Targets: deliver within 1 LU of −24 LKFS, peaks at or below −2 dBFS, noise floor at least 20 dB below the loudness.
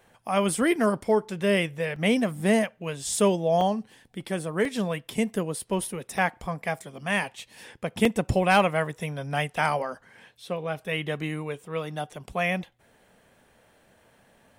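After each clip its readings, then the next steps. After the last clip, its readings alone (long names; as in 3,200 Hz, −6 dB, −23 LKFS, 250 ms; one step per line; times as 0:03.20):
number of dropouts 7; longest dropout 2.8 ms; integrated loudness −27.0 LKFS; sample peak −9.5 dBFS; target loudness −24.0 LKFS
→ repair the gap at 0:01.96/0:03.61/0:04.65/0:05.59/0:06.18/0:08.05/0:09.57, 2.8 ms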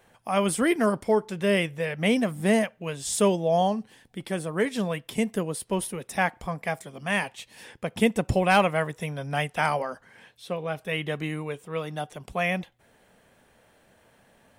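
number of dropouts 0; integrated loudness −27.0 LKFS; sample peak −9.5 dBFS; target loudness −24.0 LKFS
→ level +3 dB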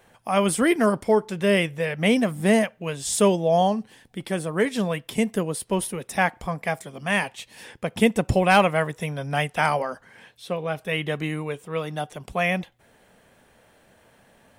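integrated loudness −24.0 LKFS; sample peak −6.5 dBFS; background noise floor −59 dBFS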